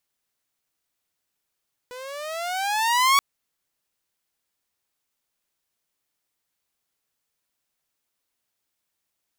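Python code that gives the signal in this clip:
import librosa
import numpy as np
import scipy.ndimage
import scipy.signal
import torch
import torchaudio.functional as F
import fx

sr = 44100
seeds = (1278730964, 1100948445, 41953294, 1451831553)

y = fx.riser_tone(sr, length_s=1.28, level_db=-11.5, wave='saw', hz=490.0, rise_st=14.5, swell_db=22.0)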